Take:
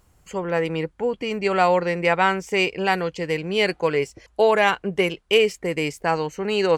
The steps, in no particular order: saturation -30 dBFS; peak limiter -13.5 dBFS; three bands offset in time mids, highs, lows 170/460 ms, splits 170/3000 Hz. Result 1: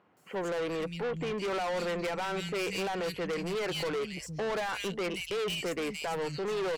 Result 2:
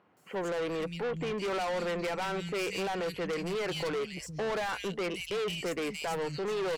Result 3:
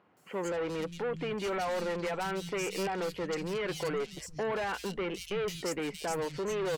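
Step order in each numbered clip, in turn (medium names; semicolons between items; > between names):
three bands offset in time > peak limiter > saturation; peak limiter > three bands offset in time > saturation; peak limiter > saturation > three bands offset in time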